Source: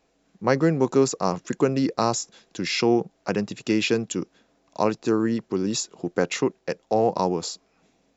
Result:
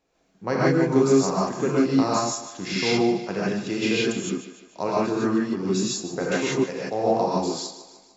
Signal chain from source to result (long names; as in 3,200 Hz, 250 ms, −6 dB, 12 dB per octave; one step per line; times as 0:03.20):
feedback echo with a high-pass in the loop 150 ms, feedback 51%, high-pass 250 Hz, level −12.5 dB
reverb whose tail is shaped and stops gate 190 ms rising, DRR −7 dB
level −7 dB